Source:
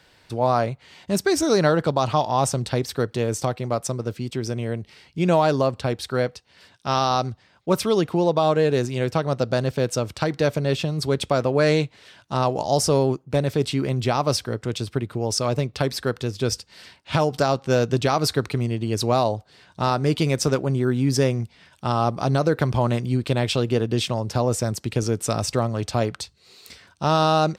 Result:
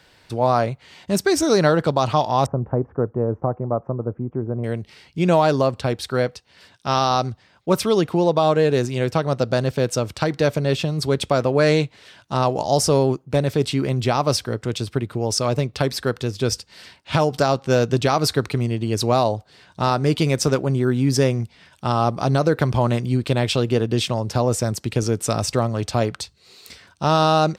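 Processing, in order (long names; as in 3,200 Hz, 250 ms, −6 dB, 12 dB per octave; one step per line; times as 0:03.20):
0:02.46–0:04.64: inverse Chebyshev low-pass filter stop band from 3,800 Hz, stop band 60 dB
level +2 dB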